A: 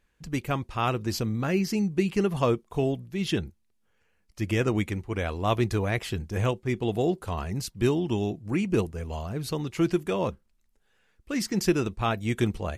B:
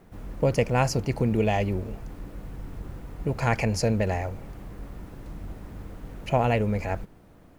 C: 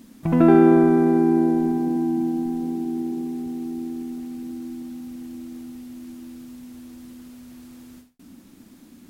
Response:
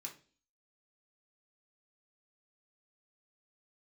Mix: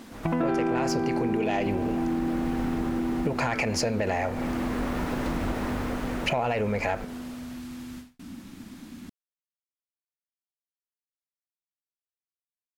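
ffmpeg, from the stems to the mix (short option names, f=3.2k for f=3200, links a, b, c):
-filter_complex "[1:a]dynaudnorm=f=140:g=9:m=14.5dB,volume=2.5dB[a];[2:a]asubboost=boost=5:cutoff=180,volume=-0.5dB[b];[a]flanger=delay=5.1:depth=9.9:regen=-89:speed=0.32:shape=triangular,alimiter=limit=-11.5dB:level=0:latency=1:release=52,volume=0dB[c];[b][c]amix=inputs=2:normalize=0,asplit=2[d][e];[e]highpass=f=720:p=1,volume=15dB,asoftclip=type=tanh:threshold=-3dB[f];[d][f]amix=inputs=2:normalize=0,lowpass=f=3.6k:p=1,volume=-6dB,acompressor=threshold=-24dB:ratio=6"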